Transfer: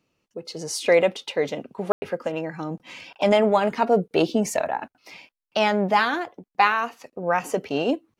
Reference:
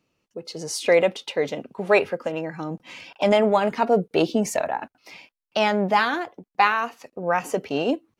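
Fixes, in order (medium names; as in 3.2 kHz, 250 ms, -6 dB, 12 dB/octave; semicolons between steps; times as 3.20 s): room tone fill 1.92–2.02 s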